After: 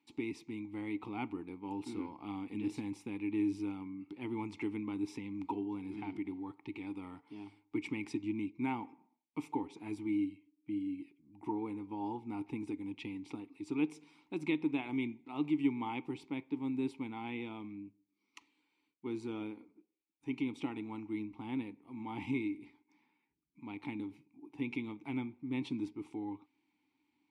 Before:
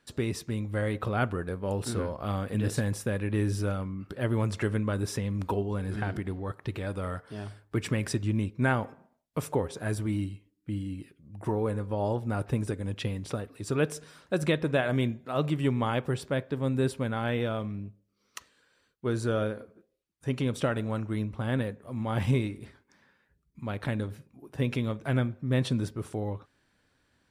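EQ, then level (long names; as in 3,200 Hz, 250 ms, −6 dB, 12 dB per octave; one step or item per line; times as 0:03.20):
formant filter u
high-shelf EQ 2,400 Hz +11.5 dB
+2.5 dB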